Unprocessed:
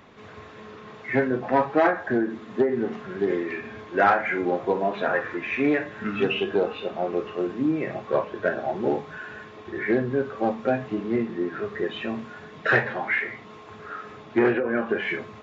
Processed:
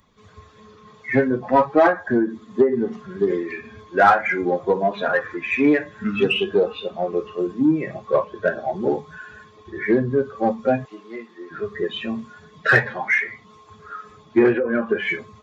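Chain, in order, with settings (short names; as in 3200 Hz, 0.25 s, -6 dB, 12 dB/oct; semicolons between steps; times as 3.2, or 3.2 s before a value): per-bin expansion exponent 1.5; 10.85–11.51 HPF 780 Hz 12 dB/oct; in parallel at -8 dB: soft clip -23 dBFS, distortion -10 dB; on the sum: gain +5.5 dB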